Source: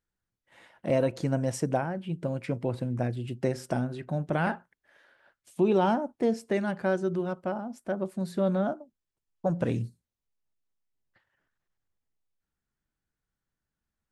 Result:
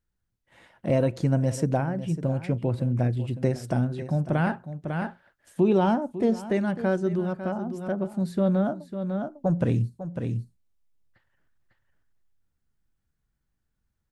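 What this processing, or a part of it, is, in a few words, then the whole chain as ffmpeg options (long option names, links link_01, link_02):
ducked delay: -filter_complex "[0:a]lowshelf=frequency=180:gain=10.5,asplit=3[link_01][link_02][link_03];[link_02]adelay=550,volume=-3.5dB[link_04];[link_03]apad=whole_len=646895[link_05];[link_04][link_05]sidechaincompress=threshold=-34dB:ratio=8:attack=25:release=556[link_06];[link_01][link_06]amix=inputs=2:normalize=0"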